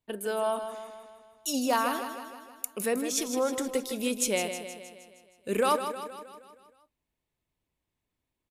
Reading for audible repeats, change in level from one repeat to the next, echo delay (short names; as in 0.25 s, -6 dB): 6, -5.0 dB, 0.157 s